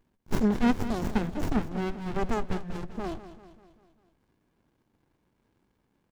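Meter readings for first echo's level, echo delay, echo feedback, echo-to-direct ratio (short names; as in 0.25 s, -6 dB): -13.0 dB, 0.196 s, 53%, -11.5 dB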